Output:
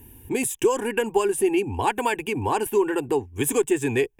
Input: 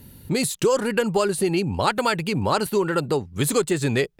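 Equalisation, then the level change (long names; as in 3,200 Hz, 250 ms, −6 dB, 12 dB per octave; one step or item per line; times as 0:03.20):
phaser with its sweep stopped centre 870 Hz, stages 8
notch filter 2,000 Hz, Q 7.2
+2.0 dB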